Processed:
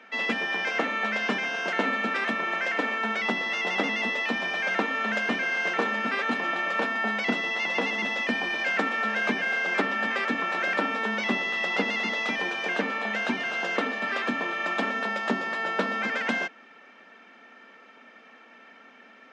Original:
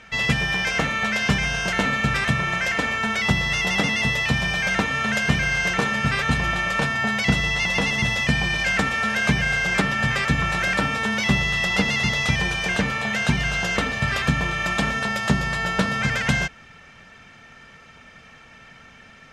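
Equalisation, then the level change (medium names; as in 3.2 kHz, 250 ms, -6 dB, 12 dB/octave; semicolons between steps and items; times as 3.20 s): steep high-pass 230 Hz 48 dB/octave; tape spacing loss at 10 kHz 23 dB; 0.0 dB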